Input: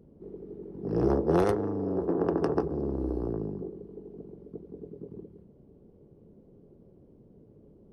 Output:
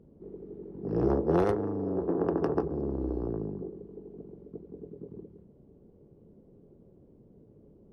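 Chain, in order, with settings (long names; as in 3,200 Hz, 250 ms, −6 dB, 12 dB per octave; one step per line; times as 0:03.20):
high-shelf EQ 4,800 Hz −10.5 dB
level −1 dB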